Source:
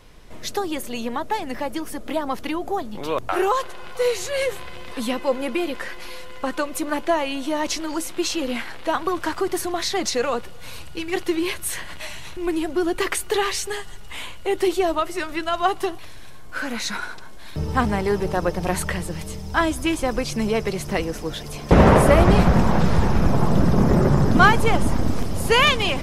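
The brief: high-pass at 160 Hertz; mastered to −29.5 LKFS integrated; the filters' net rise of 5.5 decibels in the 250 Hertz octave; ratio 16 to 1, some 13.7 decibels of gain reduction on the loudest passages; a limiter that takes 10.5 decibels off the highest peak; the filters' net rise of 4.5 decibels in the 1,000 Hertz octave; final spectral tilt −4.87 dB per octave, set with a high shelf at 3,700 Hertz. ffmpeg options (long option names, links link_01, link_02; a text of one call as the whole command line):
ffmpeg -i in.wav -af "highpass=160,equalizer=frequency=250:width_type=o:gain=8.5,equalizer=frequency=1000:width_type=o:gain=5.5,highshelf=frequency=3700:gain=-4,acompressor=threshold=-19dB:ratio=16,volume=-2.5dB,alimiter=limit=-19.5dB:level=0:latency=1" out.wav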